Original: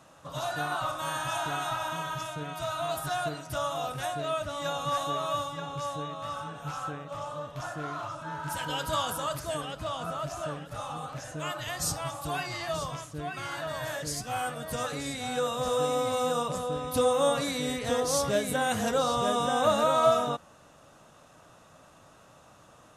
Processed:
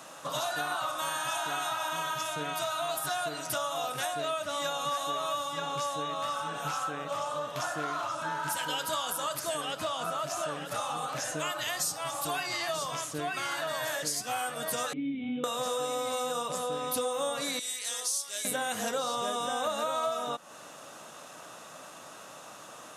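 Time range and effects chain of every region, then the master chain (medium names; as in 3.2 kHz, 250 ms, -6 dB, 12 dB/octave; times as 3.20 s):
14.93–15.44 s: cascade formant filter i + bass shelf 490 Hz +9 dB + hum notches 60/120/180/240/300/360/420/480/540 Hz
17.59–18.45 s: low-pass 11 kHz 24 dB/octave + differentiator
whole clip: high-pass 190 Hz 12 dB/octave; tilt EQ +1.5 dB/octave; compression 5:1, threshold -39 dBFS; trim +8.5 dB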